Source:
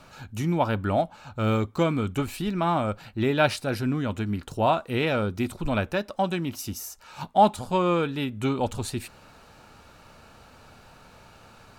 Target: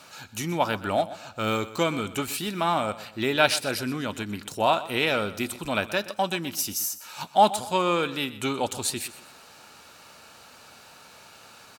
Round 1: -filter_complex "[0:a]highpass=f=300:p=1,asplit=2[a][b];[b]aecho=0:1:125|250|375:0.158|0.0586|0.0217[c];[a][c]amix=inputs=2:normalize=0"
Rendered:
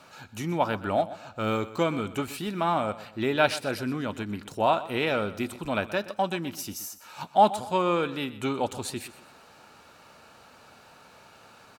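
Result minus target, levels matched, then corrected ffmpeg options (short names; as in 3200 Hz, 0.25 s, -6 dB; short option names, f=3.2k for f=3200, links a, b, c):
4000 Hz band -4.5 dB
-filter_complex "[0:a]highpass=f=300:p=1,highshelf=f=2.6k:g=10,asplit=2[a][b];[b]aecho=0:1:125|250|375:0.158|0.0586|0.0217[c];[a][c]amix=inputs=2:normalize=0"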